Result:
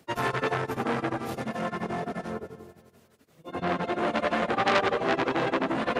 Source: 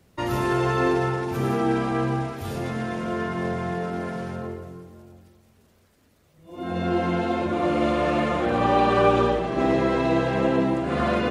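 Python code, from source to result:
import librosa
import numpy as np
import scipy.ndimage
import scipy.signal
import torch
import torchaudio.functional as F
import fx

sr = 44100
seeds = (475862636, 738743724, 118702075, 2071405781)

p1 = scipy.signal.sosfilt(scipy.signal.butter(2, 140.0, 'highpass', fs=sr, output='sos'), x)
p2 = fx.hum_notches(p1, sr, base_hz=50, count=7)
p3 = fx.step_gate(p2, sr, bpm=184, pattern='x.x.xxx.', floor_db=-24.0, edge_ms=4.5)
p4 = fx.stretch_vocoder_free(p3, sr, factor=0.53)
p5 = p4 + fx.echo_feedback(p4, sr, ms=258, feedback_pct=44, wet_db=-19.5, dry=0)
p6 = fx.transformer_sat(p5, sr, knee_hz=2500.0)
y = F.gain(torch.from_numpy(p6), 5.5).numpy()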